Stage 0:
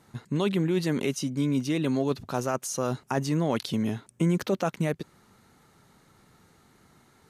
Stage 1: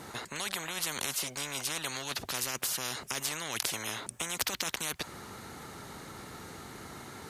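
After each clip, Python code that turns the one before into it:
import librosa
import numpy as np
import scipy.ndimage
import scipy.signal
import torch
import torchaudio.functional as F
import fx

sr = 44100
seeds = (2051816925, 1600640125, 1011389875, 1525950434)

y = scipy.signal.sosfilt(scipy.signal.butter(2, 49.0, 'highpass', fs=sr, output='sos'), x)
y = fx.spectral_comp(y, sr, ratio=10.0)
y = y * 10.0 ** (4.0 / 20.0)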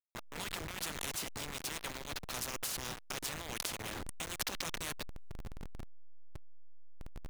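y = fx.delta_hold(x, sr, step_db=-30.0)
y = y * 10.0 ** (-5.5 / 20.0)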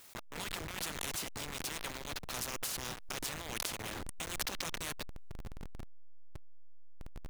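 y = fx.pre_swell(x, sr, db_per_s=76.0)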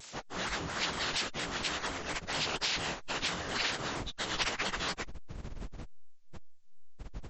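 y = fx.partial_stretch(x, sr, pct=76)
y = fx.vibrato_shape(y, sr, shape='saw_down', rate_hz=4.3, depth_cents=160.0)
y = y * 10.0 ** (6.5 / 20.0)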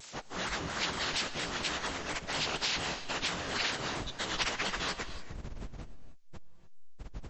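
y = fx.rev_gated(x, sr, seeds[0], gate_ms=320, shape='rising', drr_db=11.5)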